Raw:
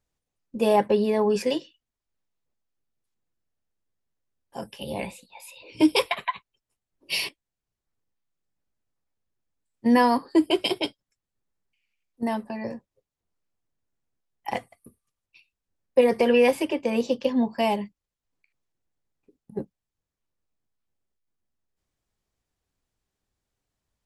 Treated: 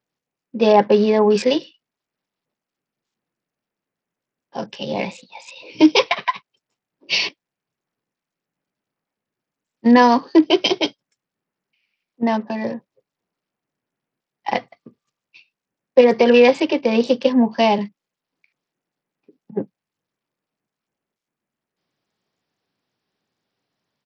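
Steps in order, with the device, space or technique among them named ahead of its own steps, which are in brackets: 17.78–19.61 s: high-pass 120 Hz 24 dB/octave; Bluetooth headset (high-pass 140 Hz 24 dB/octave; level rider gain up to 5.5 dB; resampled via 16 kHz; trim +2.5 dB; SBC 64 kbps 44.1 kHz)

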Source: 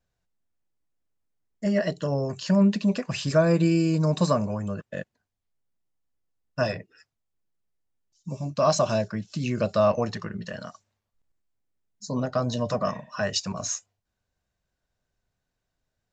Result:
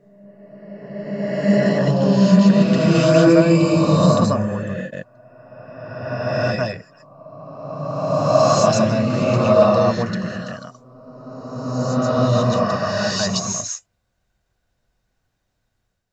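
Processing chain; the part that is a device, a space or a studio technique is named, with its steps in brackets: reverse reverb (reverse; reverberation RT60 2.5 s, pre-delay 114 ms, DRR -6 dB; reverse); trim +2 dB

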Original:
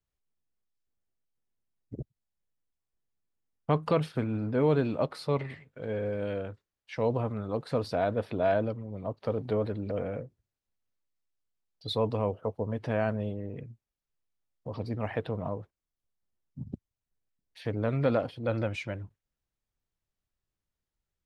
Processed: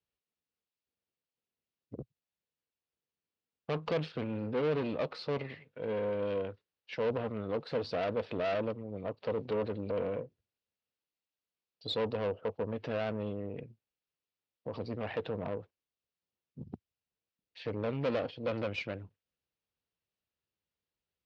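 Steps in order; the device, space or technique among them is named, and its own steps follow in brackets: guitar amplifier (valve stage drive 30 dB, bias 0.6; tone controls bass 0 dB, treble +7 dB; cabinet simulation 88–4600 Hz, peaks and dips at 120 Hz -5 dB, 480 Hz +6 dB, 2.7 kHz +5 dB)

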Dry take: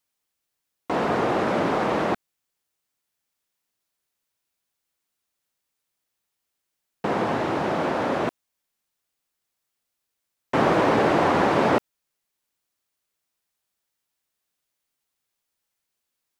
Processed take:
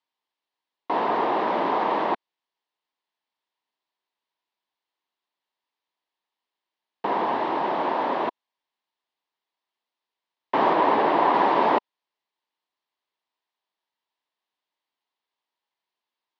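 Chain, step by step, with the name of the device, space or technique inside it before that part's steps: 10.73–11.34 s: distance through air 51 m; phone earpiece (cabinet simulation 330–4100 Hz, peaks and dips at 520 Hz -4 dB, 960 Hz +8 dB, 1.4 kHz -7 dB, 2.4 kHz -4 dB)

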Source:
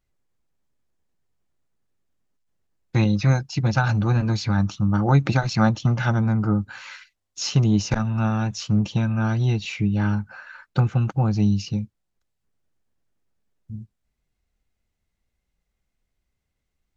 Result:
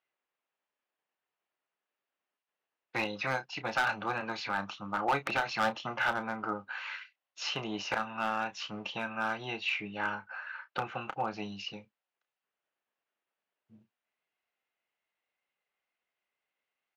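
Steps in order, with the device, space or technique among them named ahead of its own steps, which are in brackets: megaphone (band-pass 670–2700 Hz; peaking EQ 2.8 kHz +5 dB 0.37 oct; hard clipper -22.5 dBFS, distortion -11 dB; doubling 31 ms -11 dB)

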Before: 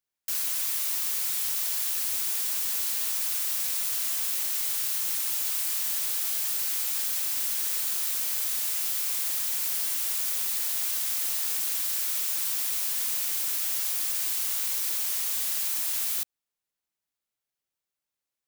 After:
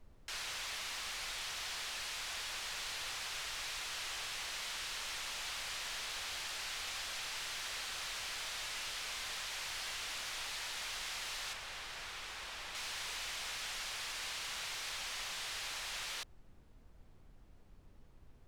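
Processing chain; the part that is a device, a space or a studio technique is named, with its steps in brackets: aircraft cabin announcement (band-pass 490–3600 Hz; saturation -34 dBFS, distortion -22 dB; brown noise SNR 15 dB); 11.53–12.75 s: treble shelf 3.1 kHz -8.5 dB; trim +1.5 dB

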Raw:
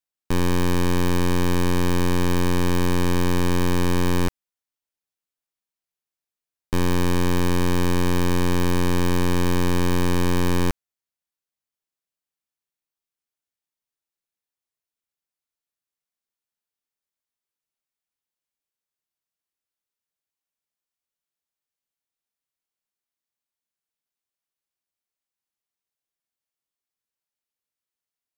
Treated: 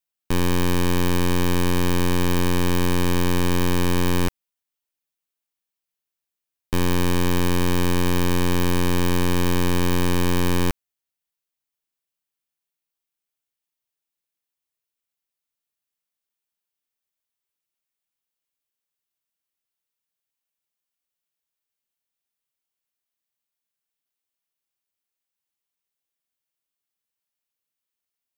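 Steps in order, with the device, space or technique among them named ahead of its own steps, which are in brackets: presence and air boost (peaking EQ 2.9 kHz +3 dB; treble shelf 11 kHz +7 dB)

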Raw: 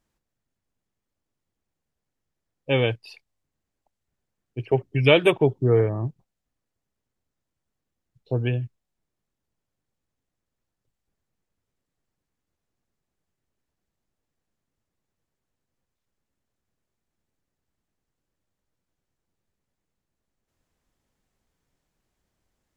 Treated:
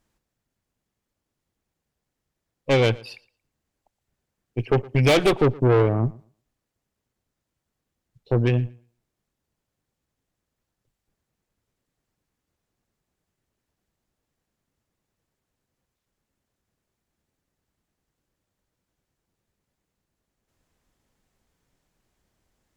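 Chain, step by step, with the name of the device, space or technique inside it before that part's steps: rockabilly slapback (valve stage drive 22 dB, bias 0.75; tape echo 116 ms, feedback 21%, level -20.5 dB, low-pass 5.2 kHz); trim +8.5 dB

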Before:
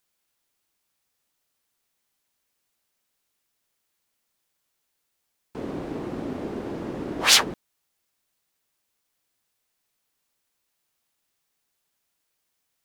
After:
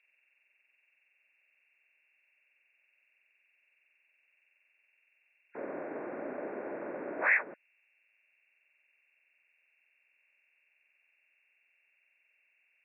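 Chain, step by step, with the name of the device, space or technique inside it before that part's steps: hearing aid with frequency lowering (knee-point frequency compression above 1.4 kHz 4:1; compression 3:1, threshold -23 dBFS, peak gain reduction 12 dB; cabinet simulation 380–6600 Hz, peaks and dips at 590 Hz +8 dB, 2.3 kHz +3 dB, 3.7 kHz +10 dB); trim -5.5 dB

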